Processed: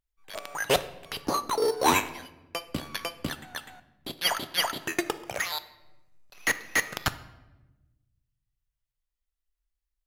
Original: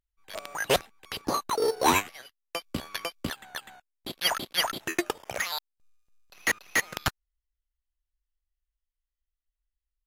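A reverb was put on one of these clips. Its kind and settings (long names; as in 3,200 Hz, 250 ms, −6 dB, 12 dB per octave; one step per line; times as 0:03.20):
rectangular room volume 520 cubic metres, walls mixed, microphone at 0.32 metres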